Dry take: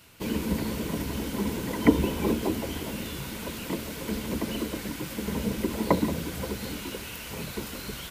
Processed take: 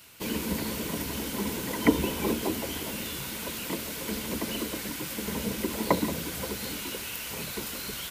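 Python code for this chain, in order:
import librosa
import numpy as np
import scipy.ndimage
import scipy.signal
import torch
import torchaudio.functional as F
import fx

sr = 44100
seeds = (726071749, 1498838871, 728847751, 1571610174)

y = fx.tilt_eq(x, sr, slope=1.5)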